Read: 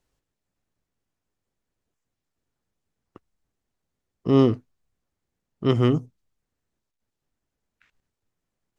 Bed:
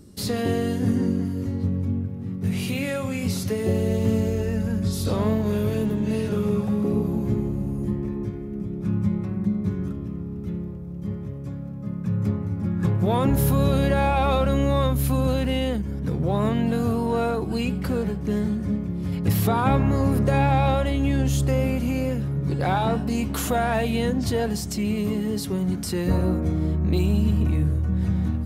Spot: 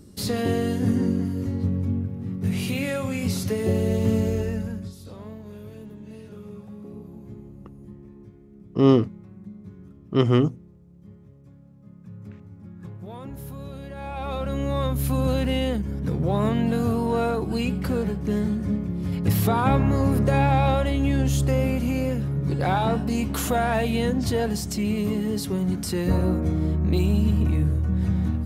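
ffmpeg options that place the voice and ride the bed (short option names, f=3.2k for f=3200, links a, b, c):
-filter_complex "[0:a]adelay=4500,volume=1dB[a];[1:a]volume=17dB,afade=t=out:st=4.36:d=0.59:silence=0.141254,afade=t=in:st=13.93:d=1.45:silence=0.141254[b];[a][b]amix=inputs=2:normalize=0"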